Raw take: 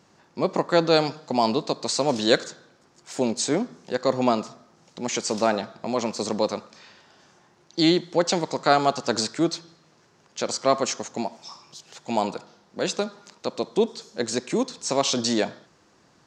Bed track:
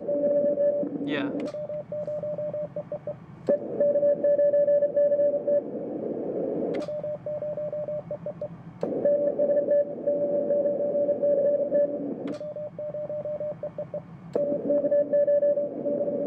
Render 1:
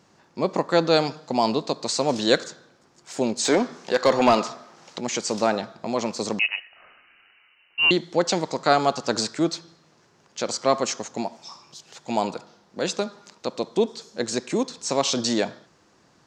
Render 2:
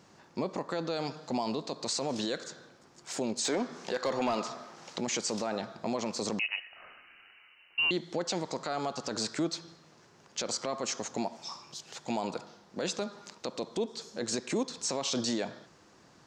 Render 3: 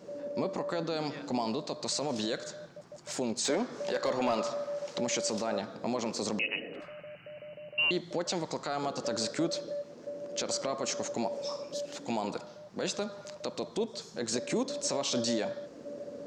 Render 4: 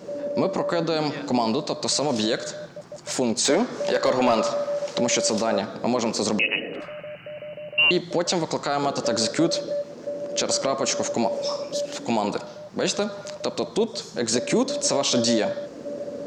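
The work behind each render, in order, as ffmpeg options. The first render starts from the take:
-filter_complex "[0:a]asplit=3[s0][s1][s2];[s0]afade=t=out:st=3.44:d=0.02[s3];[s1]asplit=2[s4][s5];[s5]highpass=f=720:p=1,volume=7.08,asoftclip=type=tanh:threshold=0.447[s6];[s4][s6]amix=inputs=2:normalize=0,lowpass=f=4800:p=1,volume=0.501,afade=t=in:st=3.44:d=0.02,afade=t=out:st=4.99:d=0.02[s7];[s2]afade=t=in:st=4.99:d=0.02[s8];[s3][s7][s8]amix=inputs=3:normalize=0,asettb=1/sr,asplit=3[s9][s10][s11];[s9]atrim=end=6.394[s12];[s10]atrim=start=6.39:end=7.91,asetpts=PTS-STARTPTS,afade=t=in:d=0.004:c=qsin,afade=t=out:st=1.516:d=0.004:c=qsin,lowpass=f=2600:t=q:w=0.5098,lowpass=f=2600:t=q:w=0.6013,lowpass=f=2600:t=q:w=0.9,lowpass=f=2600:t=q:w=2.563,afreqshift=-3100[s13];[s11]atrim=start=7.906[s14];[s12][s13]acrossfade=d=0.004:c1=hsin:c2=qsin[s15];[s15][s14]acrossfade=d=0.004:c1=qsin:c2=hsin"
-af "acompressor=threshold=0.0398:ratio=3,alimiter=limit=0.0794:level=0:latency=1:release=12"
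-filter_complex "[1:a]volume=0.178[s0];[0:a][s0]amix=inputs=2:normalize=0"
-af "volume=2.99"

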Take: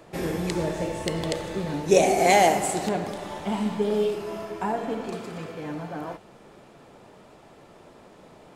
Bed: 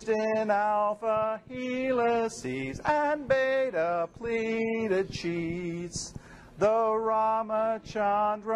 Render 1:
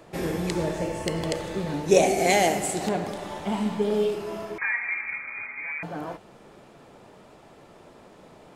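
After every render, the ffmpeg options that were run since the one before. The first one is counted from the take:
-filter_complex "[0:a]asettb=1/sr,asplit=3[s0][s1][s2];[s0]atrim=end=0.784[s3];[s1]atrim=start=0.78:end=1.4,asetpts=PTS-STARTPTS,afade=t=in:d=0.004:c=qsin,afade=t=out:st=0.616:d=0.004:c=qsin,bandreject=f=3700:w=7.1[s4];[s2]atrim=start=1.396[s5];[s3][s4]acrossfade=d=0.004:c1=hsin:c2=qsin[s6];[s6][s5]acrossfade=d=0.004:c1=qsin:c2=hsin,asettb=1/sr,asplit=3[s7][s8][s9];[s7]atrim=end=2.074[s10];[s8]atrim=start=2.07:end=2.81,asetpts=PTS-STARTPTS,afade=t=in:d=0.004:c=qsin,afade=t=out:st=0.736:d=0.004:c=qsin,equalizer=f=950:w=1.3:g=-6.5[s11];[s9]atrim=start=2.806[s12];[s10][s11]acrossfade=d=0.004:c1=hsin:c2=qsin[s13];[s13][s12]acrossfade=d=0.004:c1=qsin:c2=hsin,asettb=1/sr,asplit=3[s14][s15][s16];[s14]atrim=end=4.584[s17];[s15]atrim=start=4.58:end=5.83,asetpts=PTS-STARTPTS,afade=t=in:d=0.004:c=qsin,afade=t=out:st=1.246:d=0.004:c=qsin,lowpass=f=2200:t=q:w=0.5098,lowpass=f=2200:t=q:w=0.6013,lowpass=f=2200:t=q:w=0.9,lowpass=f=2200:t=q:w=2.563,afreqshift=-2600[s18];[s16]atrim=start=5.826[s19];[s17][s18]acrossfade=d=0.004:c1=hsin:c2=qsin[s20];[s20][s19]acrossfade=d=0.004:c1=qsin:c2=hsin"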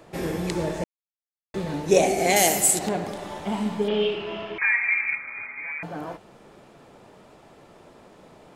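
-filter_complex "[0:a]asettb=1/sr,asplit=3[s0][s1][s2];[s0]atrim=end=2.364[s3];[s1]atrim=start=2.36:end=2.79,asetpts=PTS-STARTPTS,afade=t=in:d=0.004:c=qsin,afade=t=out:st=0.426:d=0.004:c=qsin,aemphasis=mode=production:type=75fm[s4];[s2]atrim=start=2.786[s5];[s3][s4]acrossfade=d=0.004:c1=hsin:c2=qsin[s6];[s6][s5]acrossfade=d=0.004:c1=qsin:c2=hsin,asettb=1/sr,asplit=3[s7][s8][s9];[s7]atrim=end=3.884[s10];[s8]atrim=start=3.88:end=5.15,asetpts=PTS-STARTPTS,afade=t=in:d=0.004:c=qsin,afade=t=out:st=1.266:d=0.004:c=qsin,lowpass=f=3000:t=q:w=4.9[s11];[s9]atrim=start=5.146[s12];[s10][s11]acrossfade=d=0.004:c1=hsin:c2=qsin[s13];[s13][s12]acrossfade=d=0.004:c1=qsin:c2=hsin,asplit=3[s14][s15][s16];[s14]atrim=end=0.84,asetpts=PTS-STARTPTS,afade=t=out:st=0.836:d=0.004:c=hsin[s17];[s15]atrim=start=0.84:end=1.54,asetpts=PTS-STARTPTS,volume=0[s18];[s16]atrim=start=1.54,asetpts=PTS-STARTPTS,afade=t=in:d=0.004:c=hsin[s19];[s17][s18][s19]concat=n=3:v=0:a=1"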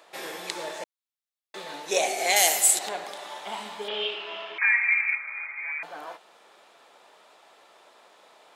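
-af "highpass=770,equalizer=f=3700:t=o:w=0.45:g=5"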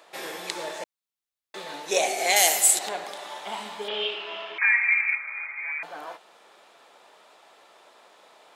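-af "volume=1.12"

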